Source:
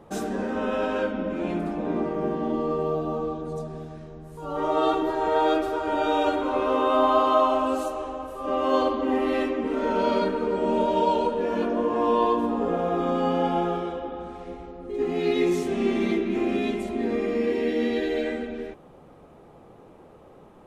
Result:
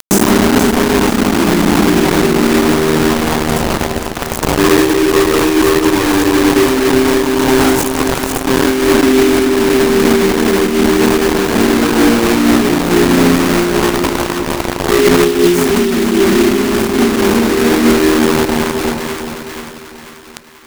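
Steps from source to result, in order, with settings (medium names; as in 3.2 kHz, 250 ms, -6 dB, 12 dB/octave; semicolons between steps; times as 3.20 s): Chebyshev band-stop 410–6200 Hz, order 5; upward compressor, threshold -28 dBFS; bit crusher 5-bit; on a send: two-band feedback delay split 1 kHz, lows 356 ms, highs 488 ms, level -9 dB; on the sum: loudness maximiser +24 dB; random flutter of the level, depth 60%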